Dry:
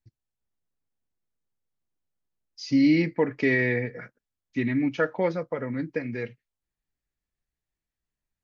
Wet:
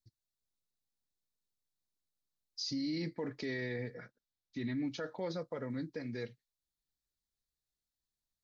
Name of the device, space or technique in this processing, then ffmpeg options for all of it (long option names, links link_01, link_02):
over-bright horn tweeter: -filter_complex "[0:a]asettb=1/sr,asplit=3[link_01][link_02][link_03];[link_01]atrim=end=3.944[link_04];[link_02]atrim=start=3.94:end=4.84,asetpts=PTS-STARTPTS,afade=type=in:duration=0.004:curve=qsin,afade=type=out:start_time=0.896:duration=0.004:curve=qsin,lowpass=5500[link_05];[link_03]atrim=start=4.836[link_06];[link_04][link_05]acrossfade=duration=0.004:curve1=hsin:curve2=qsin[link_07];[link_07][link_06]acrossfade=duration=0.004:curve1=qsin:curve2=hsin,highshelf=frequency=3200:width_type=q:width=3:gain=6.5,alimiter=limit=-22dB:level=0:latency=1:release=27,volume=-8dB"